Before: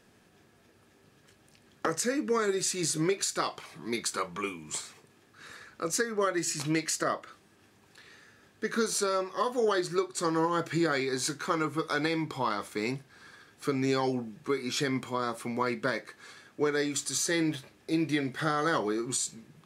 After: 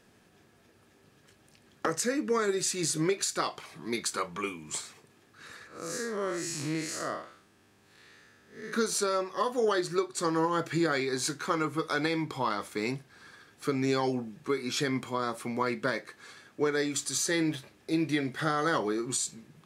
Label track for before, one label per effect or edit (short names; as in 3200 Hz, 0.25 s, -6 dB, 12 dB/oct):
5.670000	8.730000	time blur width 0.156 s